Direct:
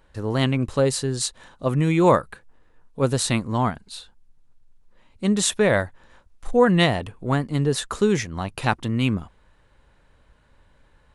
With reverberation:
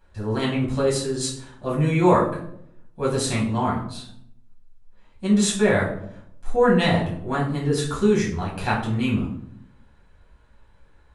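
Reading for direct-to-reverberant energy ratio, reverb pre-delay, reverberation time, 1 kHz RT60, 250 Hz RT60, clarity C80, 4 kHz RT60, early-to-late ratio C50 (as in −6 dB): −5.5 dB, 6 ms, 0.70 s, 0.60 s, 1.0 s, 10.0 dB, 0.45 s, 6.0 dB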